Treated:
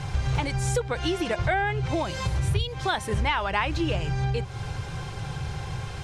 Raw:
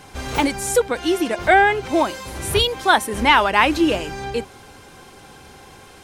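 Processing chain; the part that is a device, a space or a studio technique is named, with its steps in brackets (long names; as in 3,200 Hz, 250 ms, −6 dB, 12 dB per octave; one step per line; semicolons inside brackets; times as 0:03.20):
0:01.70–0:02.98: dynamic equaliser 1,100 Hz, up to −6 dB, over −27 dBFS, Q 0.79
jukebox (low-pass filter 6,800 Hz 12 dB per octave; low shelf with overshoot 180 Hz +10 dB, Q 3; downward compressor 5 to 1, threshold −29 dBFS, peak gain reduction 19.5 dB)
level +5 dB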